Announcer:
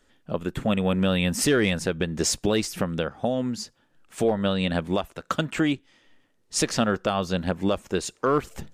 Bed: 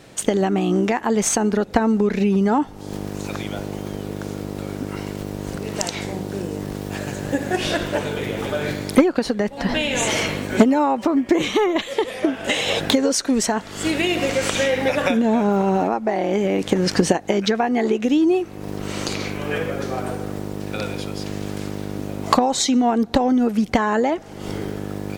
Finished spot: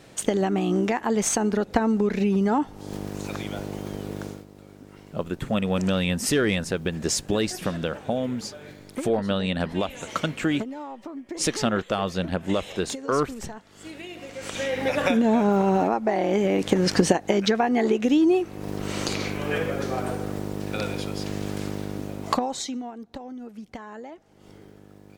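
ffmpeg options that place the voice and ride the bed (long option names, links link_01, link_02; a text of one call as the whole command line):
ffmpeg -i stem1.wav -i stem2.wav -filter_complex "[0:a]adelay=4850,volume=-1dB[link_01];[1:a]volume=12.5dB,afade=type=out:start_time=4.22:duration=0.23:silence=0.188365,afade=type=in:start_time=14.33:duration=0.81:silence=0.149624,afade=type=out:start_time=21.71:duration=1.21:silence=0.11885[link_02];[link_01][link_02]amix=inputs=2:normalize=0" out.wav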